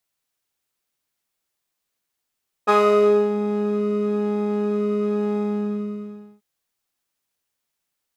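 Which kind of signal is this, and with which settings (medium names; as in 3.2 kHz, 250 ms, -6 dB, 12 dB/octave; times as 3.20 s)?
synth patch with pulse-width modulation G#4, oscillator 2 saw, interval +19 st, oscillator 2 level 0 dB, sub -3 dB, noise -7.5 dB, filter bandpass, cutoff 120 Hz, Q 1.8, filter envelope 3 oct, filter decay 0.70 s, attack 24 ms, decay 0.59 s, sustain -9.5 dB, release 1.04 s, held 2.70 s, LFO 1 Hz, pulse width 40%, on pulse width 11%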